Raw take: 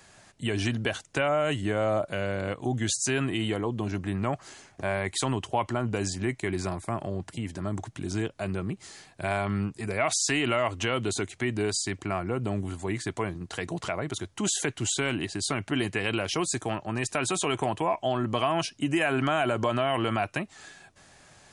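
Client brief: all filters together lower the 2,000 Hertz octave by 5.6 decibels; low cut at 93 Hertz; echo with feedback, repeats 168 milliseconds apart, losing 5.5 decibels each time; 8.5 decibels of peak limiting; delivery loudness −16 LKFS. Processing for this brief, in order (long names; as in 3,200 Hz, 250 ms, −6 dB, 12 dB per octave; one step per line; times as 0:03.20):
high-pass filter 93 Hz
parametric band 2,000 Hz −7.5 dB
brickwall limiter −22.5 dBFS
repeating echo 168 ms, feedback 53%, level −5.5 dB
level +16 dB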